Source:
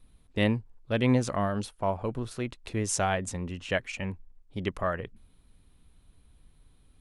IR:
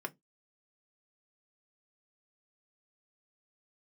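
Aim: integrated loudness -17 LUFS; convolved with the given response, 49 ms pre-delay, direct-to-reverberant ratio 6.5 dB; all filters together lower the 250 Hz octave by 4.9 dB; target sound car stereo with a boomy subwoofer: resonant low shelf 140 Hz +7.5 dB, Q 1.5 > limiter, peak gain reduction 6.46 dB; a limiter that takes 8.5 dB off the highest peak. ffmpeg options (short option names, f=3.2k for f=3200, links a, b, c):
-filter_complex "[0:a]equalizer=f=250:t=o:g=-4.5,alimiter=limit=-21dB:level=0:latency=1,asplit=2[a][b];[1:a]atrim=start_sample=2205,adelay=49[c];[b][c]afir=irnorm=-1:irlink=0,volume=-8dB[d];[a][d]amix=inputs=2:normalize=0,lowshelf=f=140:t=q:w=1.5:g=7.5,volume=17dB,alimiter=limit=-6dB:level=0:latency=1"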